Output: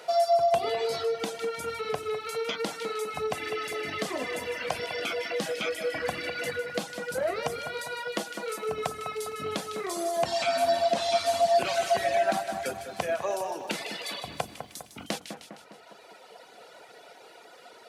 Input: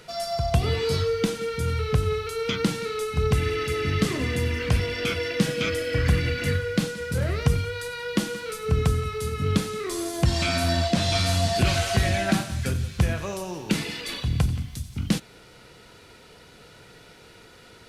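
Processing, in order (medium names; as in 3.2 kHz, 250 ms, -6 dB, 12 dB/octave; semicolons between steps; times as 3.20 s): high-pass 350 Hz 12 dB/octave; hum notches 60/120/180/240/300/360/420/480 Hz; reverb removal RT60 1.8 s; two-band feedback delay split 2 kHz, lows 202 ms, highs 154 ms, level -11 dB; compression 2:1, threshold -33 dBFS, peak gain reduction 6 dB; peaking EQ 700 Hz +12 dB 0.88 oct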